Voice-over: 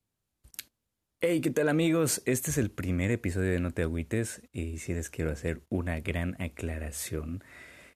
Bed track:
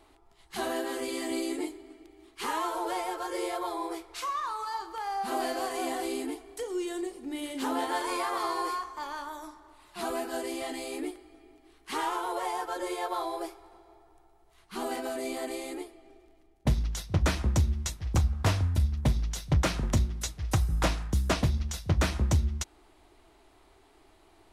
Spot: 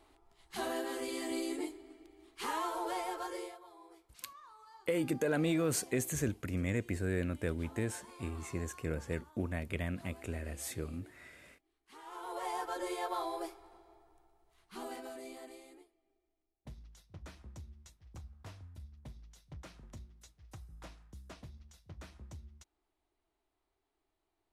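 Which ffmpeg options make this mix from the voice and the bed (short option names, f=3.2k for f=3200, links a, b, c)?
-filter_complex "[0:a]adelay=3650,volume=-5.5dB[a];[1:a]volume=13dB,afade=t=out:st=3.24:d=0.34:silence=0.133352,afade=t=in:st=12.04:d=0.53:silence=0.125893,afade=t=out:st=13.69:d=2.23:silence=0.1[b];[a][b]amix=inputs=2:normalize=0"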